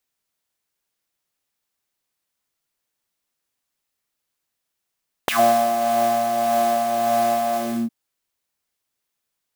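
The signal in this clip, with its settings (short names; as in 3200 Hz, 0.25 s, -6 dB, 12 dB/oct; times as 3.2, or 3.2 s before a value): synth patch with tremolo A#3, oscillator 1 triangle, oscillator 2 triangle, interval -12 st, oscillator 2 level -3 dB, noise -19.5 dB, filter highpass, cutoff 220 Hz, Q 5.7, filter envelope 4 oct, filter decay 0.11 s, attack 2.2 ms, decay 0.52 s, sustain -5 dB, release 0.33 s, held 2.28 s, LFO 1.7 Hz, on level 3.5 dB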